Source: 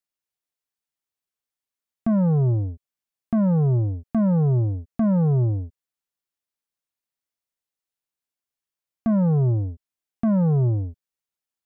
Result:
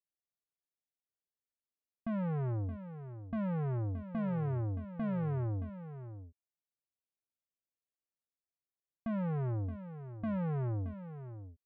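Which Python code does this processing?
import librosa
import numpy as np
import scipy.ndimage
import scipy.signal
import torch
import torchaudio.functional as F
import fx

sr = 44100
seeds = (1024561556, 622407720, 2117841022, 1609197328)

y = scipy.signal.sosfilt(scipy.signal.butter(6, 740.0, 'lowpass', fs=sr, output='sos'), x)
y = 10.0 ** (-26.0 / 20.0) * np.tanh(y / 10.0 ** (-26.0 / 20.0))
y = y + 10.0 ** (-11.5 / 20.0) * np.pad(y, (int(622 * sr / 1000.0), 0))[:len(y)]
y = F.gain(torch.from_numpy(y), -7.0).numpy()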